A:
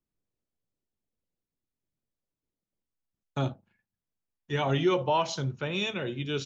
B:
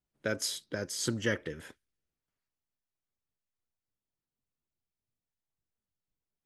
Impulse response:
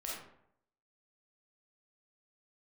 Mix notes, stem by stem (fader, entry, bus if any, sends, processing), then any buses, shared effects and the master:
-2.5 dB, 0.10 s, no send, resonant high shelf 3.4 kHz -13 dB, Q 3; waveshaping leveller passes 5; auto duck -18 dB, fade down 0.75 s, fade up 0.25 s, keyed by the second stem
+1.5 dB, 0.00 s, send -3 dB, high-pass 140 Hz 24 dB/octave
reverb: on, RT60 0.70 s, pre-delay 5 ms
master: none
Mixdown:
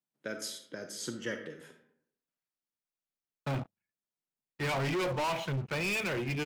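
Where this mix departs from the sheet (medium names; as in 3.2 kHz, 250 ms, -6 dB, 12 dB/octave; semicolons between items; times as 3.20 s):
stem A -2.5 dB -> -14.5 dB; stem B +1.5 dB -> -9.0 dB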